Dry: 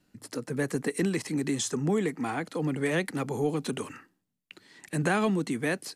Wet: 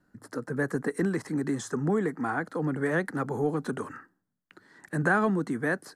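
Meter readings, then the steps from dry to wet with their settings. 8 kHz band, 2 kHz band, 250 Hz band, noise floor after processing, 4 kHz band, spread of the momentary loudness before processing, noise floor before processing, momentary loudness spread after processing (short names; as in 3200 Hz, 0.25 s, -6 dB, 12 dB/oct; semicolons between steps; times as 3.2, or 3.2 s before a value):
-8.5 dB, +3.0 dB, 0.0 dB, -79 dBFS, -11.0 dB, 8 LU, -79 dBFS, 10 LU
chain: resonant high shelf 2000 Hz -8 dB, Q 3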